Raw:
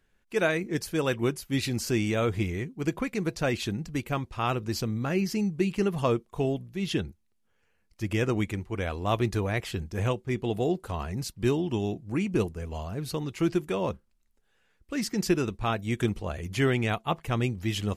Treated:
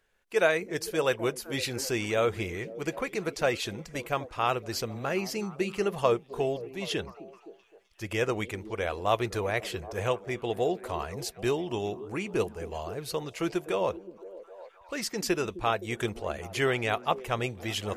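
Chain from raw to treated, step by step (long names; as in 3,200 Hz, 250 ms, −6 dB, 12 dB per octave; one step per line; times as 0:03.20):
low shelf with overshoot 360 Hz −8 dB, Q 1.5
echo through a band-pass that steps 258 ms, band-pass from 250 Hz, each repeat 0.7 octaves, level −11 dB
level +1 dB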